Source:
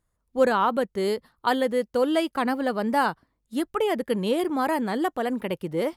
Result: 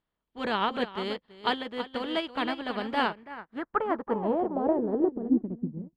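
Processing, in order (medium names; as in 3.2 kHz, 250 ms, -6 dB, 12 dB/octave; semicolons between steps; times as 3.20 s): spectral levelling over time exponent 0.6; treble shelf 6.2 kHz +10.5 dB; band-stop 520 Hz, Q 12; delay 330 ms -6.5 dB; low-pass sweep 3.3 kHz -> 170 Hz, 2.94–5.91 s; bass shelf 130 Hz +9.5 dB; upward expansion 2.5:1, over -34 dBFS; trim -4 dB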